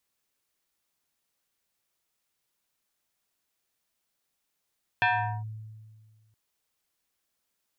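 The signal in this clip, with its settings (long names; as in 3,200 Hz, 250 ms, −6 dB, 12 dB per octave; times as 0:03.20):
two-operator FM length 1.32 s, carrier 109 Hz, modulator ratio 7.71, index 2.9, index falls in 0.42 s linear, decay 1.76 s, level −19 dB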